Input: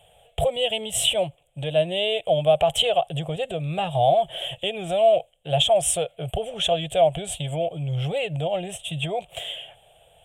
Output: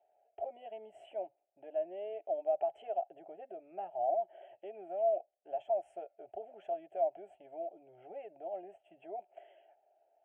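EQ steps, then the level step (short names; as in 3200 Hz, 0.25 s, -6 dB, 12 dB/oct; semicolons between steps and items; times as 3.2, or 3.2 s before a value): ladder band-pass 550 Hz, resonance 30%; fixed phaser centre 740 Hz, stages 8; -1.5 dB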